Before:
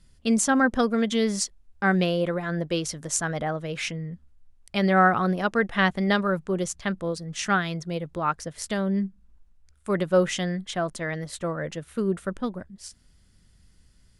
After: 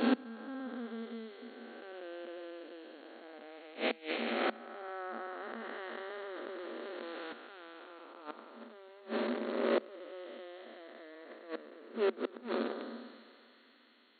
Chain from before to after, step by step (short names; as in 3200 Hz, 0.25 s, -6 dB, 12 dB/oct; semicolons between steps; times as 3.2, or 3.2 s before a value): time blur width 0.703 s; thinning echo 0.733 s, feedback 41%, high-pass 1200 Hz, level -17.5 dB; in parallel at -8.5 dB: bit-crush 6-bit; on the sum: flipped gate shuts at -24 dBFS, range -25 dB; FFT band-pass 220–4400 Hz; 5.4–7.33 fast leveller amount 100%; gain +8 dB